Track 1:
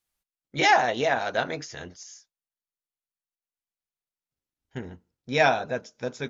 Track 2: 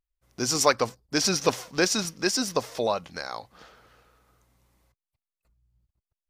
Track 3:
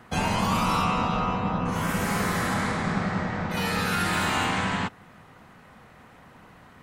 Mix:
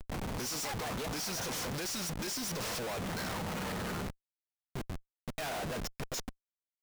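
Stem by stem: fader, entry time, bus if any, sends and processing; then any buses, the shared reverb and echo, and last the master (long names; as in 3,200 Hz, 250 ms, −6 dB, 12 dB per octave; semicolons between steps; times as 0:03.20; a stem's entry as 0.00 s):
+2.5 dB, 0.00 s, bus A, no send, gate pattern ".xxxxxx.x.x.x" 184 BPM −60 dB; automatic ducking −18 dB, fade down 1.75 s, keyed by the second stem
−3.5 dB, 0.00 s, bus A, no send, no processing
0:01.33 −10 dB → 0:01.69 −19.5 dB → 0:02.64 −19.5 dB → 0:03.12 −9.5 dB → 0:03.98 −9.5 dB → 0:04.26 −18 dB, 0.00 s, no bus, no send, low-pass filter 7,500 Hz 12 dB per octave; compressor whose output falls as the input rises −32 dBFS, ratio −0.5; asymmetric clip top −37.5 dBFS
bus A: 0.0 dB, high-shelf EQ 4,600 Hz +10.5 dB; downward compressor 6 to 1, threshold −29 dBFS, peak gain reduction 15.5 dB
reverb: not used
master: comparator with hysteresis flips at −46.5 dBFS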